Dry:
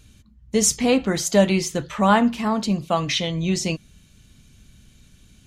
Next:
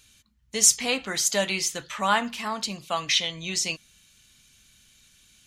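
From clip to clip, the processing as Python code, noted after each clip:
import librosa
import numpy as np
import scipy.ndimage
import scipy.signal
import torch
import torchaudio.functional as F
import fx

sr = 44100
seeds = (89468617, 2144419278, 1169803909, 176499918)

y = fx.tilt_shelf(x, sr, db=-9.5, hz=740.0)
y = y * librosa.db_to_amplitude(-7.0)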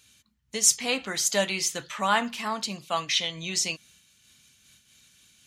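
y = scipy.signal.sosfilt(scipy.signal.butter(2, 82.0, 'highpass', fs=sr, output='sos'), x)
y = fx.am_noise(y, sr, seeds[0], hz=5.7, depth_pct=60)
y = y * librosa.db_to_amplitude(2.0)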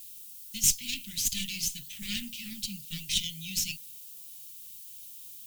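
y = fx.dmg_noise_colour(x, sr, seeds[1], colour='violet', level_db=-42.0)
y = fx.cheby_harmonics(y, sr, harmonics=(8,), levels_db=(-15,), full_scale_db=-4.5)
y = scipy.signal.sosfilt(scipy.signal.cheby1(3, 1.0, [200.0, 2800.0], 'bandstop', fs=sr, output='sos'), y)
y = y * librosa.db_to_amplitude(-3.5)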